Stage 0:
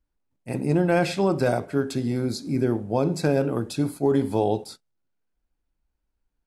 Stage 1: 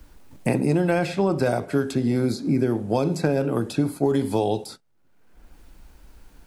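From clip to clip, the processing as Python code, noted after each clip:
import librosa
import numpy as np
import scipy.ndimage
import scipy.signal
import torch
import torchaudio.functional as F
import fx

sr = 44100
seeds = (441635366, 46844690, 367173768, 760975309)

y = fx.band_squash(x, sr, depth_pct=100)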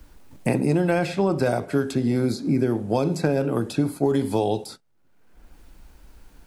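y = x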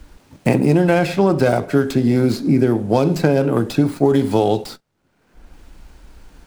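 y = fx.running_max(x, sr, window=3)
y = F.gain(torch.from_numpy(y), 6.5).numpy()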